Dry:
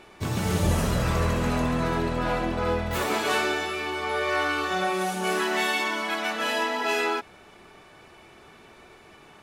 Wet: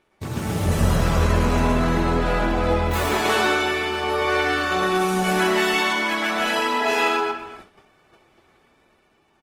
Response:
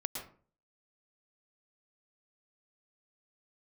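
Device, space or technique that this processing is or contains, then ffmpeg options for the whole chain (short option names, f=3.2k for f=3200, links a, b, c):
speakerphone in a meeting room: -filter_complex "[1:a]atrim=start_sample=2205[a];[0:a][a]afir=irnorm=-1:irlink=0,asplit=2[b][c];[c]adelay=240,highpass=300,lowpass=3.4k,asoftclip=type=hard:threshold=-19dB,volume=-14dB[d];[b][d]amix=inputs=2:normalize=0,dynaudnorm=f=110:g=17:m=4dB,agate=range=-13dB:threshold=-42dB:ratio=16:detection=peak" -ar 48000 -c:a libopus -b:a 20k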